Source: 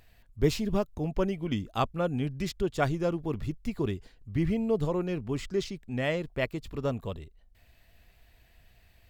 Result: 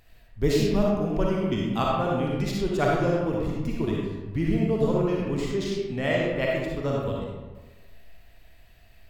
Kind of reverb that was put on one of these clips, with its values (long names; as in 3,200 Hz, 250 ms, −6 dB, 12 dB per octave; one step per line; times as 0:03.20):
comb and all-pass reverb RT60 1.3 s, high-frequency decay 0.55×, pre-delay 15 ms, DRR −3.5 dB